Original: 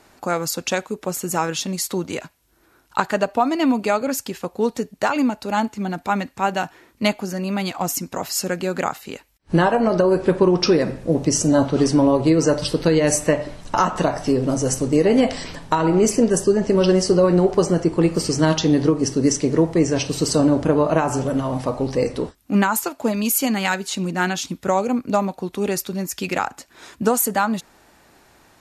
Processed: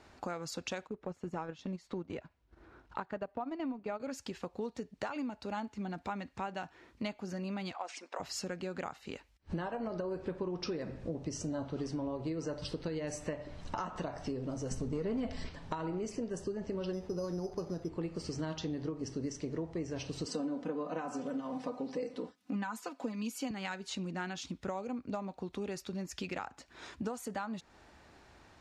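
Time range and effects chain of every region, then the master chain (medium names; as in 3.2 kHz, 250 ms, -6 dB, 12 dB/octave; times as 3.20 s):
0.87–4.00 s: companding laws mixed up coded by mu + low-pass 1.5 kHz 6 dB/octave + transient shaper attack -2 dB, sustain -11 dB
7.74–8.20 s: high-pass 470 Hz 24 dB/octave + treble shelf 7.3 kHz -10 dB + decimation joined by straight lines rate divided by 3×
14.71–15.49 s: bass shelf 190 Hz +10.5 dB + comb 4.6 ms, depth 39% + waveshaping leveller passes 1
16.93–17.89 s: distance through air 340 m + careless resampling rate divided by 8×, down none, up hold
20.26–23.51 s: high-pass 150 Hz 24 dB/octave + comb 4 ms, depth 73%
whole clip: low-pass 5.6 kHz 12 dB/octave; peaking EQ 68 Hz +8.5 dB 0.94 oct; compression 4:1, threshold -31 dBFS; trim -6.5 dB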